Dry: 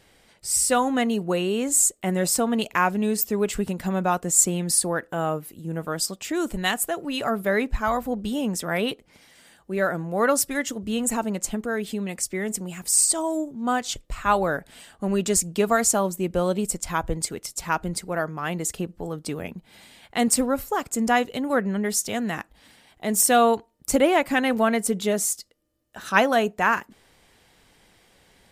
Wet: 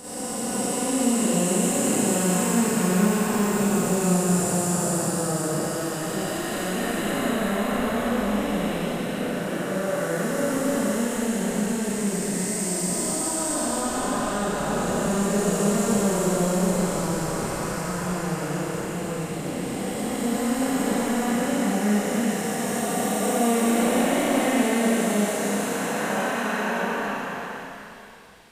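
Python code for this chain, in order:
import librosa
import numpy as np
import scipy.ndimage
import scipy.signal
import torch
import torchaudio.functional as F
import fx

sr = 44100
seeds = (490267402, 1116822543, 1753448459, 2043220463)

y = fx.spec_blur(x, sr, span_ms=1400.0)
y = fx.rev_schroeder(y, sr, rt60_s=1.7, comb_ms=30, drr_db=-10.0)
y = y * librosa.db_to_amplitude(-2.5)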